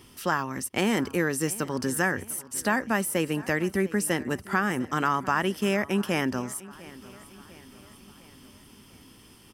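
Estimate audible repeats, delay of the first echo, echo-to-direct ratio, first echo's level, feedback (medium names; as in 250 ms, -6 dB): 3, 699 ms, -18.5 dB, -20.0 dB, 53%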